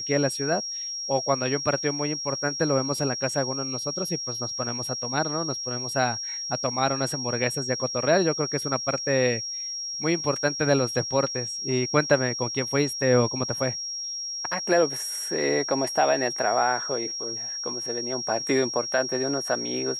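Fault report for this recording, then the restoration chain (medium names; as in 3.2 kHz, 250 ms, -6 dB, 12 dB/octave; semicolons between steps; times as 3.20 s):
whine 5.6 kHz -30 dBFS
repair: band-stop 5.6 kHz, Q 30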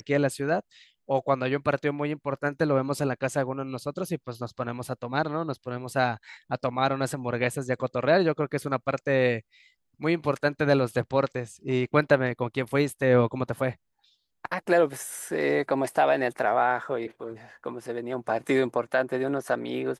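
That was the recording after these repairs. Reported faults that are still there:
nothing left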